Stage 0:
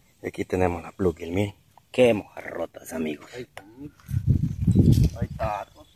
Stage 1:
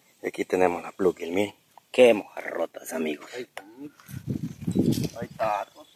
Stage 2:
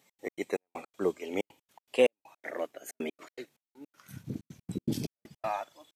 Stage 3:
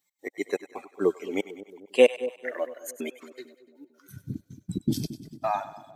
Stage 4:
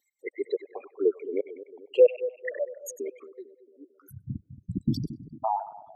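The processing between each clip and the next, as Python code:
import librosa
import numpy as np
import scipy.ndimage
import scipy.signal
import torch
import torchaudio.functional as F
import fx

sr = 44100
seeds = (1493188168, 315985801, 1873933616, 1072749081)

y1 = scipy.signal.sosfilt(scipy.signal.butter(2, 280.0, 'highpass', fs=sr, output='sos'), x)
y1 = F.gain(torch.from_numpy(y1), 2.5).numpy()
y2 = fx.low_shelf(y1, sr, hz=110.0, db=-5.5)
y2 = fx.step_gate(y2, sr, bpm=160, pattern='x.x.xx..x.xxxxx.', floor_db=-60.0, edge_ms=4.5)
y2 = F.gain(torch.from_numpy(y2), -6.0).numpy()
y3 = fx.bin_expand(y2, sr, power=1.5)
y3 = fx.echo_split(y3, sr, split_hz=640.0, low_ms=224, high_ms=98, feedback_pct=52, wet_db=-14.0)
y3 = F.gain(torch.from_numpy(y3), 7.0).numpy()
y4 = fx.envelope_sharpen(y3, sr, power=3.0)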